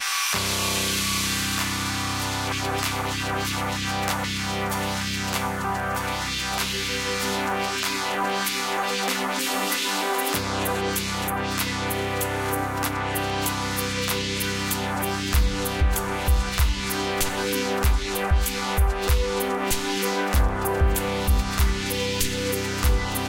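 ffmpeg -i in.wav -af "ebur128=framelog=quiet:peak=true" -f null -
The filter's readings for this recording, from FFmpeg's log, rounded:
Integrated loudness:
  I:         -24.4 LUFS
  Threshold: -34.4 LUFS
Loudness range:
  LRA:         1.9 LU
  Threshold: -44.6 LUFS
  LRA low:   -25.6 LUFS
  LRA high:  -23.7 LUFS
True peak:
  Peak:       -8.3 dBFS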